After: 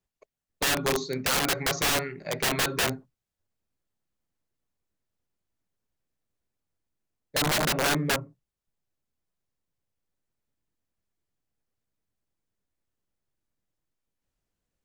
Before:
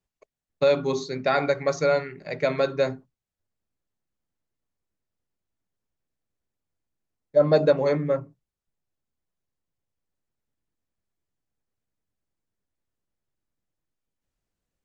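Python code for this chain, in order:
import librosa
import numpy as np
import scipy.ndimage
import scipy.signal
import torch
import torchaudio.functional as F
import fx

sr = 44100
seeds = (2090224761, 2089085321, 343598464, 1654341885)

y = fx.rider(x, sr, range_db=10, speed_s=2.0)
y = (np.mod(10.0 ** (19.5 / 20.0) * y + 1.0, 2.0) - 1.0) / 10.0 ** (19.5 / 20.0)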